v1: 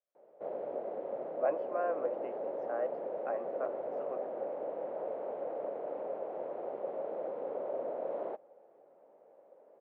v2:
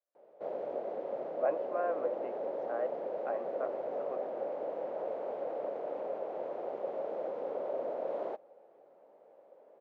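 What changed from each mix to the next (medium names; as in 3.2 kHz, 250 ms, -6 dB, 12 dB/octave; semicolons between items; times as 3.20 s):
background: remove distance through air 340 m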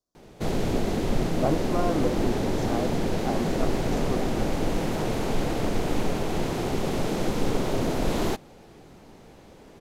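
speech: add Butterworth band-stop 2.2 kHz, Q 0.53; master: remove ladder band-pass 610 Hz, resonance 70%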